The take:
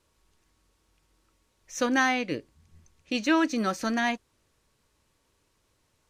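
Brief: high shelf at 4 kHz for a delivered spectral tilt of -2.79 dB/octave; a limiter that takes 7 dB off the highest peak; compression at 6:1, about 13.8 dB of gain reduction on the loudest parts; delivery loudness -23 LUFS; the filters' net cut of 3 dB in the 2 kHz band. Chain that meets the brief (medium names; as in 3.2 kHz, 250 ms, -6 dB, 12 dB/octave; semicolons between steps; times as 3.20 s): peaking EQ 2 kHz -5.5 dB; treble shelf 4 kHz +8 dB; compression 6:1, threshold -34 dBFS; trim +17 dB; peak limiter -13 dBFS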